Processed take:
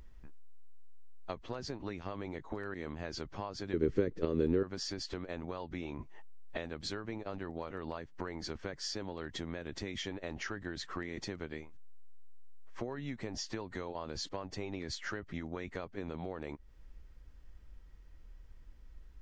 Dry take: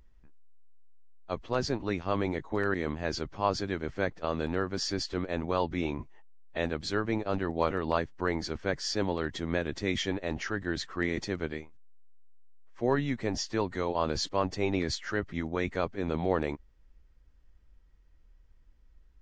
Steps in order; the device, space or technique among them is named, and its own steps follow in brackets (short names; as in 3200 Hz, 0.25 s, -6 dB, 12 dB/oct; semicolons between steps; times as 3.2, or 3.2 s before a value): serial compression, leveller first (compressor 3:1, threshold -30 dBFS, peak gain reduction 7.5 dB; compressor 6:1, threshold -43 dBFS, peak gain reduction 15.5 dB); 3.73–4.63 resonant low shelf 550 Hz +9 dB, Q 3; gain +6 dB